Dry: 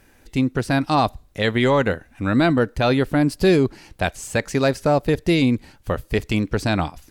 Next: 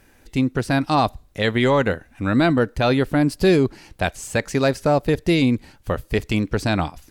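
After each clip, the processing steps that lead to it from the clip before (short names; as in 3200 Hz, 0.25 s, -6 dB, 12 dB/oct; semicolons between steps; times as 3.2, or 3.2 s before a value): nothing audible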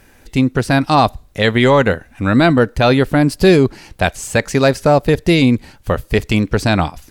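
bell 310 Hz -2.5 dB 0.38 oct; gain +6.5 dB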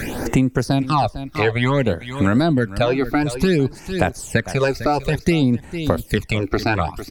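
phaser stages 12, 0.57 Hz, lowest notch 160–4700 Hz; echo 0.451 s -16 dB; three-band squash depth 100%; gain -4 dB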